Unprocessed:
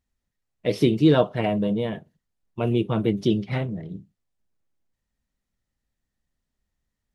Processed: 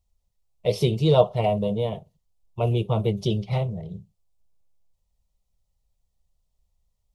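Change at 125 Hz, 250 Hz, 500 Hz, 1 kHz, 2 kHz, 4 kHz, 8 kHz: +2.5 dB, -6.5 dB, +1.0 dB, +2.5 dB, -6.5 dB, +0.5 dB, no reading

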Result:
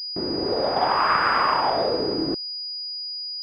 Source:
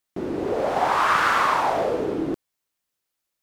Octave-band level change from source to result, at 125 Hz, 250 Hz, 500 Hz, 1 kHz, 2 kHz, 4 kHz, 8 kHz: 0.0 dB, 0.0 dB, 0.0 dB, -0.5 dB, -1.5 dB, +10.5 dB, under -15 dB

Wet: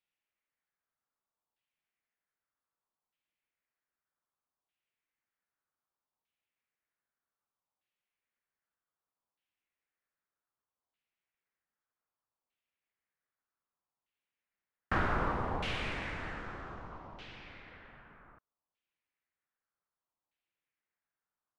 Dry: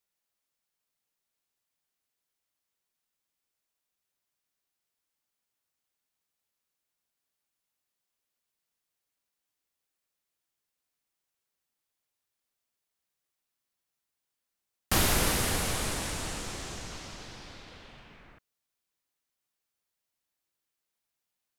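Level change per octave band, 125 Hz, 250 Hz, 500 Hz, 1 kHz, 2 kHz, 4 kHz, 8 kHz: -5.5 dB, -5.0 dB, -4.0 dB, -0.5 dB, -3.0 dB, -12.0 dB, -30.0 dB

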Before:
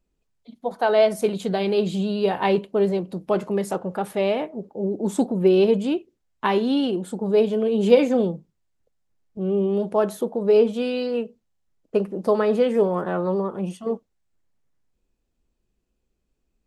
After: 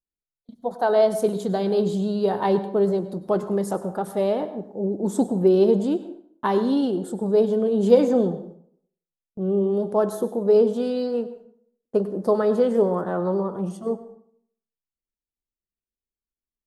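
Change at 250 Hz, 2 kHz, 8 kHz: 0.0 dB, -6.0 dB, no reading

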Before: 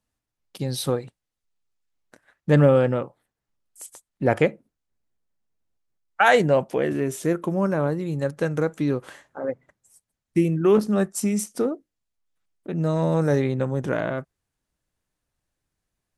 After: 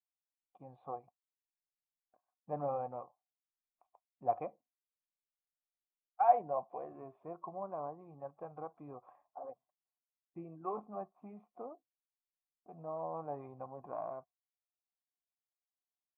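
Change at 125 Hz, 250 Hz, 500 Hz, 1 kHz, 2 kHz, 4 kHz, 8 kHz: -29.5 dB, -28.0 dB, -18.5 dB, -7.5 dB, -34.0 dB, under -40 dB, under -40 dB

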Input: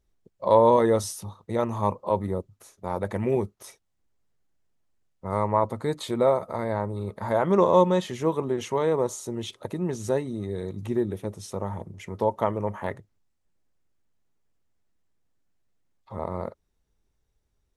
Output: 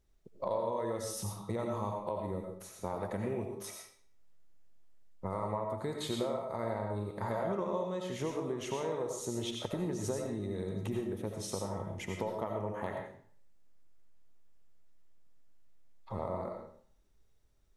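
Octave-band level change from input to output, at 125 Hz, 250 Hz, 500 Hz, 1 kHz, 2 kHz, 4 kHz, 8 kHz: -8.5 dB, -9.5 dB, -11.5 dB, -12.5 dB, -8.0 dB, -4.0 dB, -3.5 dB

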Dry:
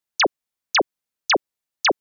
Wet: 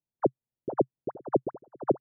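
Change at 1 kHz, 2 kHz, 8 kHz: -10.5 dB, under -30 dB, no reading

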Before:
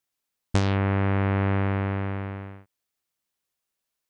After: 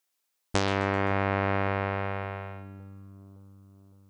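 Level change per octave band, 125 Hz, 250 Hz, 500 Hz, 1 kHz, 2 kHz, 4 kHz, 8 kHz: -7.5 dB, -5.0 dB, +1.0 dB, +2.5 dB, +2.0 dB, +2.0 dB, no reading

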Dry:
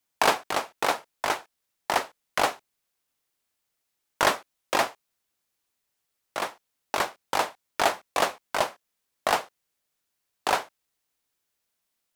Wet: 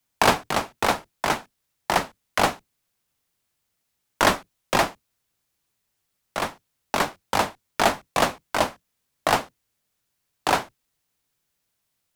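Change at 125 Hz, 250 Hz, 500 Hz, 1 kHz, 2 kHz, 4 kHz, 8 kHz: +12.5 dB, +8.5 dB, +3.0 dB, +3.0 dB, +3.0 dB, +3.0 dB, +3.0 dB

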